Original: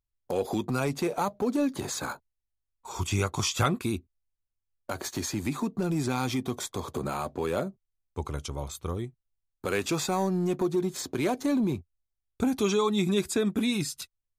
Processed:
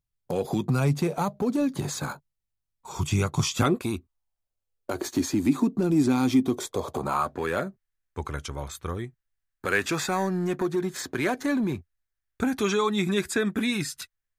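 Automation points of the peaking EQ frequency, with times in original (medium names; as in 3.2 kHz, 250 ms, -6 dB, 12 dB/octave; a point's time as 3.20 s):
peaking EQ +12 dB 0.7 oct
3.51 s 150 Hz
3.96 s 1.2 kHz
5.17 s 280 Hz
6.47 s 280 Hz
7.37 s 1.7 kHz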